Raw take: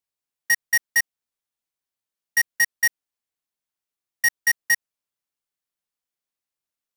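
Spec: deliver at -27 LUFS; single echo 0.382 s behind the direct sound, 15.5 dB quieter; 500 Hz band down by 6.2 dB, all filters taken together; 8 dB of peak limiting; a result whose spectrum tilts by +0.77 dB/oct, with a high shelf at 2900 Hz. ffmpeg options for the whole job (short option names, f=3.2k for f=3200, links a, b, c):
-af "equalizer=f=500:t=o:g=-6.5,highshelf=f=2.9k:g=-8.5,alimiter=level_in=1.5dB:limit=-24dB:level=0:latency=1,volume=-1.5dB,aecho=1:1:382:0.168,volume=6dB"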